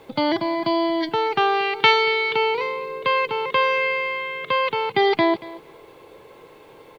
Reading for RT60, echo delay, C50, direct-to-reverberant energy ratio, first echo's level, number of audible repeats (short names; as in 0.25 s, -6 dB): none, 0.232 s, none, none, -18.5 dB, 2